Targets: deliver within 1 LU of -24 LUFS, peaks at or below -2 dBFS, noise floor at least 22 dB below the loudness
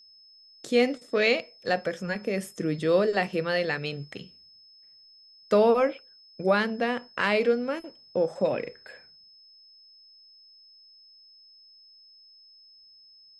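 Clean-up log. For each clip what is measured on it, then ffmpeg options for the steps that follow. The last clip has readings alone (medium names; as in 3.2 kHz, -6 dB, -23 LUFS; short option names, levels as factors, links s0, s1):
steady tone 5.2 kHz; tone level -52 dBFS; loudness -26.5 LUFS; peak level -10.5 dBFS; loudness target -24.0 LUFS
-> -af "bandreject=f=5200:w=30"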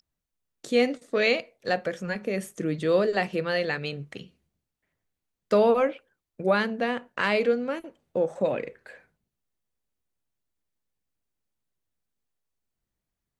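steady tone not found; loudness -26.5 LUFS; peak level -10.5 dBFS; loudness target -24.0 LUFS
-> -af "volume=1.33"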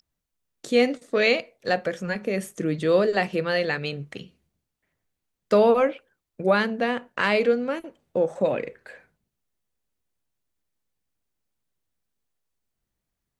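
loudness -24.0 LUFS; peak level -8.0 dBFS; noise floor -83 dBFS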